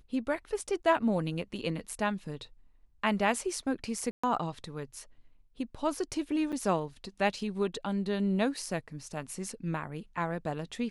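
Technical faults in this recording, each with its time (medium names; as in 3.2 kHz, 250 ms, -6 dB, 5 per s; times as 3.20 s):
4.11–4.24 s: dropout 125 ms
6.52–6.53 s: dropout 7.2 ms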